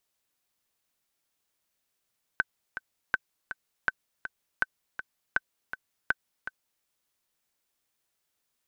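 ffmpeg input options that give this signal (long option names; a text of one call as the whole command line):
ffmpeg -f lavfi -i "aevalsrc='pow(10,(-10.5-11*gte(mod(t,2*60/162),60/162))/20)*sin(2*PI*1530*mod(t,60/162))*exp(-6.91*mod(t,60/162)/0.03)':duration=4.44:sample_rate=44100" out.wav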